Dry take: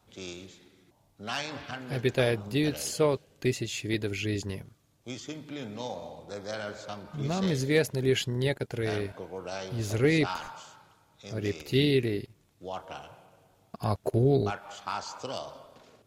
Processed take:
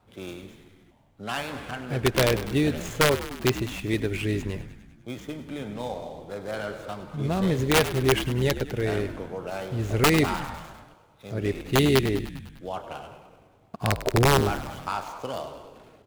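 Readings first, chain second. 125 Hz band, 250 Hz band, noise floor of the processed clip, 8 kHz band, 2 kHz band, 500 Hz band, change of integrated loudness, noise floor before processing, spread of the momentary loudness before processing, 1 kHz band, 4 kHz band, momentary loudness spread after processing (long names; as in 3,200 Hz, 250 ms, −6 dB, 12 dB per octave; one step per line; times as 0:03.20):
+4.0 dB, +4.0 dB, −58 dBFS, +5.5 dB, +5.5 dB, +3.0 dB, +4.0 dB, −66 dBFS, 16 LU, +7.5 dB, +4.5 dB, 19 LU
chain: running median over 9 samples
wrap-around overflow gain 16 dB
echo with shifted repeats 100 ms, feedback 64%, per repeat −64 Hz, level −13 dB
level +4 dB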